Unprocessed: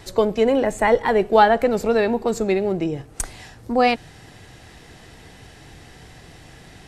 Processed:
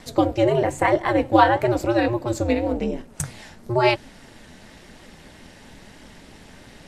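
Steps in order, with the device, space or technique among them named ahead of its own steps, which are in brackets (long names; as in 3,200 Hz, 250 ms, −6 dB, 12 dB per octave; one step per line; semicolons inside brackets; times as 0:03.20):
alien voice (ring modulation 120 Hz; flanger 1 Hz, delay 2.6 ms, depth 9.4 ms, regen +67%)
level +6 dB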